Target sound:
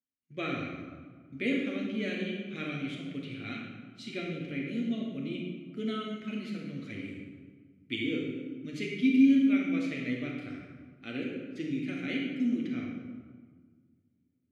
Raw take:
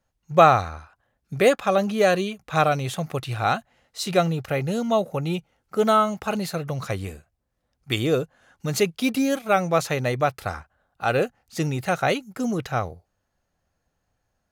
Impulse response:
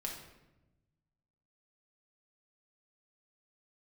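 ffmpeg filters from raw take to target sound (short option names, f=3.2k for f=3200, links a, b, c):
-filter_complex "[0:a]agate=range=-11dB:threshold=-42dB:ratio=16:detection=peak,asplit=3[a][b][c];[a]bandpass=f=270:t=q:w=8,volume=0dB[d];[b]bandpass=f=2.29k:t=q:w=8,volume=-6dB[e];[c]bandpass=f=3.01k:t=q:w=8,volume=-9dB[f];[d][e][f]amix=inputs=3:normalize=0[g];[1:a]atrim=start_sample=2205,asetrate=24255,aresample=44100[h];[g][h]afir=irnorm=-1:irlink=0"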